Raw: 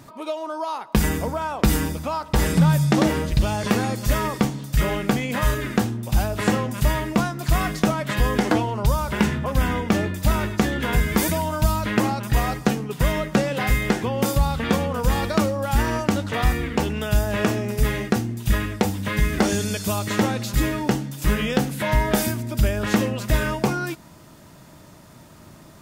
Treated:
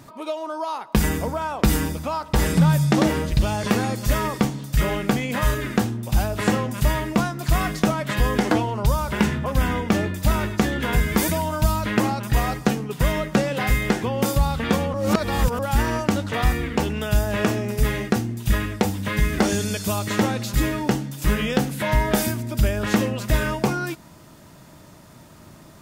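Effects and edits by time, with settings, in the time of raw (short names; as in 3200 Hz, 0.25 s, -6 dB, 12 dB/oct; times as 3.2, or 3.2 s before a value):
14.94–15.59 reverse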